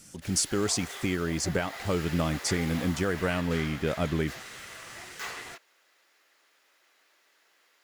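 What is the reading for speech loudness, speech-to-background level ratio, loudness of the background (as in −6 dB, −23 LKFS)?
−29.5 LKFS, 11.0 dB, −40.5 LKFS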